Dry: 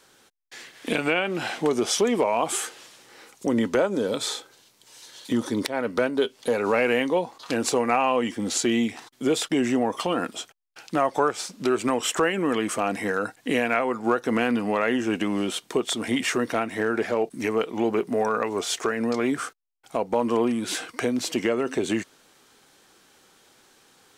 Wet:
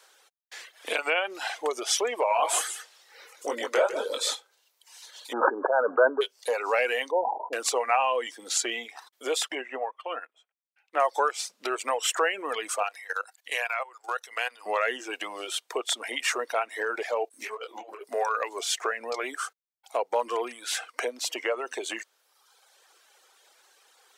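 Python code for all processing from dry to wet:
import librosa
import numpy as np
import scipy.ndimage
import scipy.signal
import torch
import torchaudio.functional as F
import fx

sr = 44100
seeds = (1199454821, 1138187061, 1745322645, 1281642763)

y = fx.chain(x, sr, fx.doubler(ms=21.0, db=-3.5),
    fx.echo_single(ms=151, db=-5.0), at=(2.28, 4.35))
y = fx.chain(y, sr, fx.leveller(passes=2),
    fx.brickwall_lowpass(high_hz=1700.0),
    fx.sustainer(db_per_s=24.0), at=(5.33, 6.21))
y = fx.chain(y, sr, fx.brickwall_lowpass(high_hz=1000.0),
    fx.sustainer(db_per_s=40.0), at=(7.11, 7.53))
y = fx.chain(y, sr, fx.high_shelf_res(hz=3400.0, db=-12.0, q=1.5),
    fx.upward_expand(threshold_db=-33.0, expansion=2.5), at=(9.55, 11.0))
y = fx.chain(y, sr, fx.highpass(hz=530.0, slope=12),
    fx.tilt_shelf(db=-4.5, hz=1100.0),
    fx.level_steps(step_db=14), at=(12.83, 14.66))
y = fx.chain(y, sr, fx.over_compress(threshold_db=-26.0, ratio=-0.5),
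    fx.clip_hard(threshold_db=-19.0),
    fx.detune_double(cents=23), at=(17.29, 18.04))
y = scipy.signal.sosfilt(scipy.signal.butter(4, 490.0, 'highpass', fs=sr, output='sos'), y)
y = fx.dereverb_blind(y, sr, rt60_s=1.1)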